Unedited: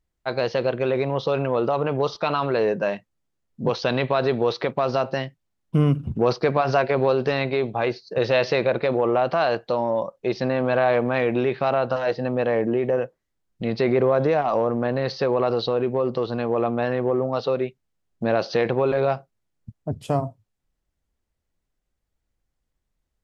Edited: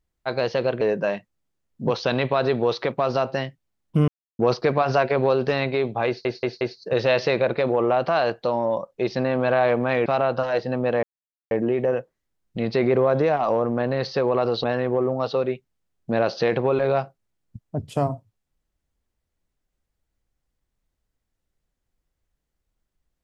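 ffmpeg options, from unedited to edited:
ffmpeg -i in.wav -filter_complex "[0:a]asplit=10[link_01][link_02][link_03][link_04][link_05][link_06][link_07][link_08][link_09][link_10];[link_01]atrim=end=0.812[link_11];[link_02]atrim=start=2.598:end=5.87,asetpts=PTS-STARTPTS,afade=type=out:start_time=3.268:duration=0.004:curve=hsin[link_12];[link_03]atrim=start=5.87:end=6.18,asetpts=PTS-STARTPTS,volume=0[link_13];[link_04]atrim=start=6.18:end=8.042,asetpts=PTS-STARTPTS,afade=type=in:duration=0.004:curve=hsin[link_14];[link_05]atrim=start=7.858:end=8.042[link_15];[link_06]atrim=start=7.858:end=8.042[link_16];[link_07]atrim=start=7.858:end=11.312[link_17];[link_08]atrim=start=11.588:end=12.56,asetpts=PTS-STARTPTS,afade=type=out:start_time=0.968:duration=0.004:curve=hsin,apad=pad_dur=0.48[link_18];[link_09]atrim=start=12.56:end=15.692,asetpts=PTS-STARTPTS,afade=type=in:duration=0.004:curve=hsin[link_19];[link_10]atrim=start=16.768[link_20];[link_12][link_13][link_14]concat=n=3:v=0:a=1[link_21];[link_11][link_21]acrossfade=duration=0.004:curve1=hsin:curve2=hsin[link_22];[link_22][link_15]acrossfade=duration=0.004:curve1=hsin:curve2=hsin[link_23];[link_23][link_16]acrossfade=duration=0.004:curve1=hsin:curve2=hsin[link_24];[link_24][link_17]acrossfade=duration=0.004:curve1=hsin:curve2=hsin[link_25];[link_18][link_19]concat=n=2:v=0:a=1[link_26];[link_25][link_26]acrossfade=duration=0.004:curve1=hsin:curve2=hsin[link_27];[link_27][link_20]acrossfade=duration=0.004:curve1=hsin:curve2=hsin" out.wav

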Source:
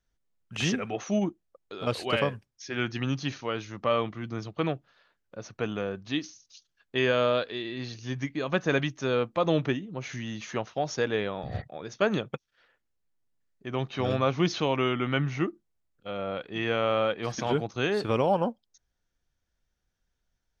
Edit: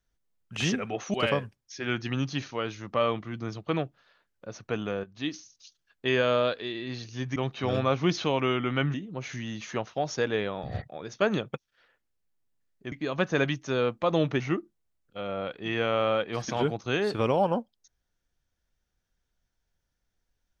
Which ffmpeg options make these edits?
ffmpeg -i in.wav -filter_complex "[0:a]asplit=7[link_01][link_02][link_03][link_04][link_05][link_06][link_07];[link_01]atrim=end=1.142[link_08];[link_02]atrim=start=2.038:end=5.94,asetpts=PTS-STARTPTS,afade=type=out:start_time=3.898:duration=0.004:curve=hsin:silence=0.223872[link_09];[link_03]atrim=start=5.94:end=8.262,asetpts=PTS-STARTPTS,afade=type=in:duration=0.3:silence=0.223872[link_10];[link_04]atrim=start=13.718:end=15.302[link_11];[link_05]atrim=start=9.738:end=13.722[link_12];[link_06]atrim=start=8.258:end=9.742[link_13];[link_07]atrim=start=15.298[link_14];[link_09][link_10]concat=n=2:v=0:a=1[link_15];[link_08][link_15]acrossfade=duration=0.004:curve1=hsin:curve2=hsin[link_16];[link_16][link_11]acrossfade=duration=0.004:curve1=hsin:curve2=hsin[link_17];[link_17][link_12]acrossfade=duration=0.004:curve1=hsin:curve2=hsin[link_18];[link_18][link_13]acrossfade=duration=0.004:curve1=hsin:curve2=hsin[link_19];[link_19][link_14]acrossfade=duration=0.004:curve1=hsin:curve2=hsin" out.wav

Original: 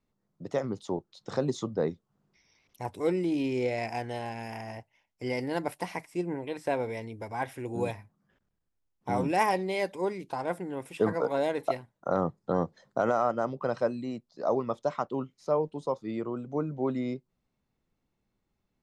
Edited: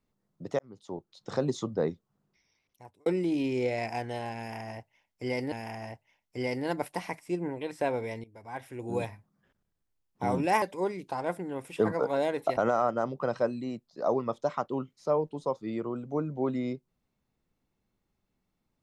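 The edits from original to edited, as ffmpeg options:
ffmpeg -i in.wav -filter_complex "[0:a]asplit=7[link_01][link_02][link_03][link_04][link_05][link_06][link_07];[link_01]atrim=end=0.59,asetpts=PTS-STARTPTS,afade=type=out:start_time=0.586:duration=0.004:curve=hsin[link_08];[link_02]atrim=start=0.59:end=3.06,asetpts=PTS-STARTPTS,afade=type=in:duration=0.72,afade=type=out:start_time=1.3:duration=1.17[link_09];[link_03]atrim=start=3.06:end=5.522,asetpts=PTS-STARTPTS,afade=type=in:duration=0.004:curve=hsin[link_10];[link_04]atrim=start=4.378:end=7.1,asetpts=PTS-STARTPTS,afade=type=out:start_time=2.718:duration=0.004:curve=hsin:silence=0.125893[link_11];[link_05]atrim=start=7.1:end=9.482,asetpts=PTS-STARTPTS,afade=type=in:duration=0.8:silence=0.125893[link_12];[link_06]atrim=start=9.828:end=11.782[link_13];[link_07]atrim=start=12.978[link_14];[link_08][link_09][link_10]concat=n=3:v=0:a=1[link_15];[link_11][link_12]concat=n=2:v=0:a=1[link_16];[link_15][link_16]acrossfade=duration=0.004:curve1=hsin:curve2=hsin[link_17];[link_17][link_13]acrossfade=duration=0.004:curve1=hsin:curve2=hsin[link_18];[link_18][link_14]acrossfade=duration=0.004:curve1=hsin:curve2=hsin" out.wav

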